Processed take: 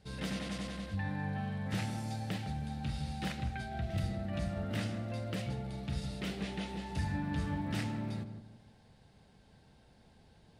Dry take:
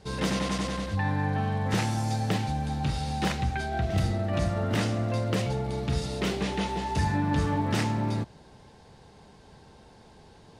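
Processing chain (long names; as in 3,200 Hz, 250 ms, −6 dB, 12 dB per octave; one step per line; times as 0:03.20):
graphic EQ with 15 bands 400 Hz −7 dB, 1,000 Hz −8 dB, 6,300 Hz −5 dB
on a send: feedback echo with a low-pass in the loop 158 ms, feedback 38%, low-pass 930 Hz, level −7 dB
on the sum: level −8 dB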